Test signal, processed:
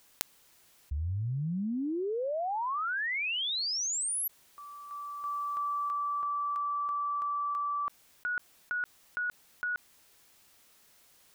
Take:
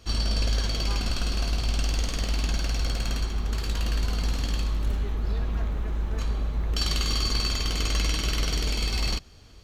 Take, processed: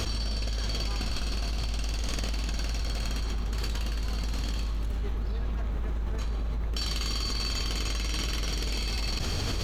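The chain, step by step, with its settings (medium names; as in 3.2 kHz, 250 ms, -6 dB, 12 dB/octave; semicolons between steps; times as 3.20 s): level flattener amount 100%; trim -7.5 dB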